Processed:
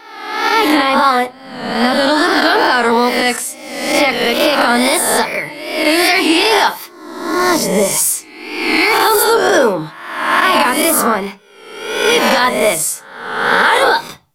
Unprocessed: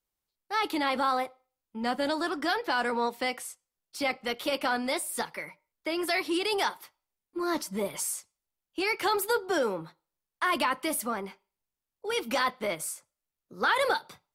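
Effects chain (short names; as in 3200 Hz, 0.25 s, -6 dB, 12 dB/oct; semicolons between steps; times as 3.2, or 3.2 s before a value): spectral swells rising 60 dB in 1.03 s; wow and flutter 64 cents; on a send at -9.5 dB: reverb RT60 0.25 s, pre-delay 3 ms; on the sum: maximiser +16 dB; gain -1 dB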